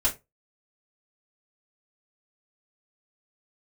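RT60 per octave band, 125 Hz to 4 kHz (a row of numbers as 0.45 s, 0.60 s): 0.30 s, 0.25 s, 0.25 s, 0.20 s, 0.20 s, 0.15 s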